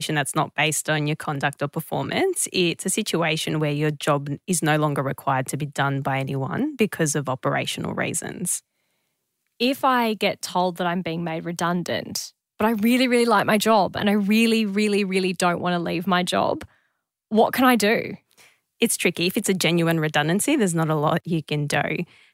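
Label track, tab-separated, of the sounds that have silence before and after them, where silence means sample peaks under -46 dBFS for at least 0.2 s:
9.600000	12.300000	sound
12.590000	16.650000	sound
17.310000	18.480000	sound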